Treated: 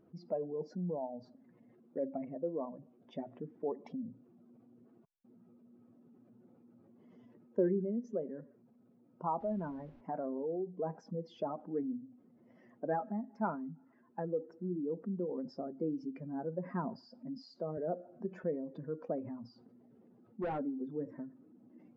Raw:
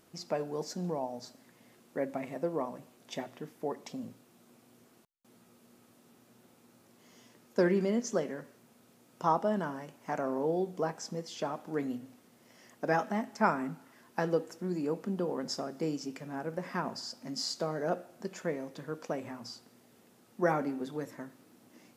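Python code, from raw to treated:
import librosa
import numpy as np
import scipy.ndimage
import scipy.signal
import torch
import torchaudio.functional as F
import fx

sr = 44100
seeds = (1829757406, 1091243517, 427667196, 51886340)

y = fx.spec_expand(x, sr, power=1.8)
y = fx.rider(y, sr, range_db=3, speed_s=0.5)
y = fx.dmg_noise_colour(y, sr, seeds[0], colour='pink', level_db=-60.0, at=(9.39, 10.0), fade=0.02)
y = fx.clip_hard(y, sr, threshold_db=-29.0, at=(19.17, 20.58), fade=0.02)
y = fx.spacing_loss(y, sr, db_at_10k=42)
y = fx.band_squash(y, sr, depth_pct=40, at=(17.77, 18.44))
y = y * librosa.db_to_amplitude(-2.0)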